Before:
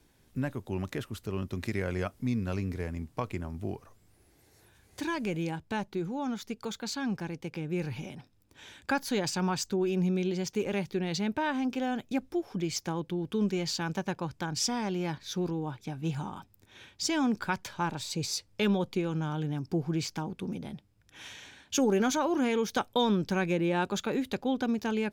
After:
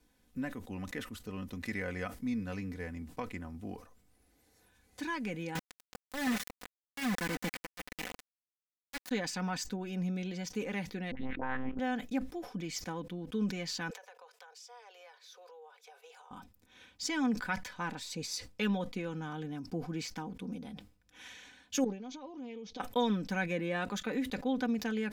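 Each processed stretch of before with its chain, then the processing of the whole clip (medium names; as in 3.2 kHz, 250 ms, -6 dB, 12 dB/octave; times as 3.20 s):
5.55–9.11 s: slow attack 540 ms + delay 323 ms -10 dB + companded quantiser 2-bit
11.11–11.79 s: low-pass 2.2 kHz + phase dispersion highs, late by 74 ms, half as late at 980 Hz + monotone LPC vocoder at 8 kHz 130 Hz
13.90–16.31 s: steep high-pass 420 Hz 96 dB/octave + compression 4:1, threshold -48 dBFS
21.84–22.80 s: low-pass 5.4 kHz 24 dB/octave + peaking EQ 1.5 kHz -12 dB 0.69 oct + compression 16:1, threshold -36 dBFS
whole clip: dynamic bell 1.9 kHz, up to +8 dB, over -55 dBFS, Q 3.1; comb 4 ms, depth 65%; decay stretcher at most 130 dB/s; trim -7 dB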